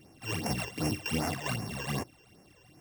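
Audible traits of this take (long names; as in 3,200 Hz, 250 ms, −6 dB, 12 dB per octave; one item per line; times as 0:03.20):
a buzz of ramps at a fixed pitch in blocks of 16 samples
phaser sweep stages 12, 2.6 Hz, lowest notch 210–3,700 Hz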